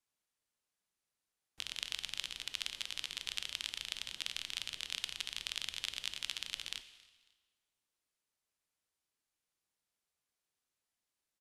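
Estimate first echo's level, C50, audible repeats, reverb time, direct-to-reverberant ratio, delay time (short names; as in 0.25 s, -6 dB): -24.0 dB, 12.5 dB, 2, 1.4 s, 11.0 dB, 0.274 s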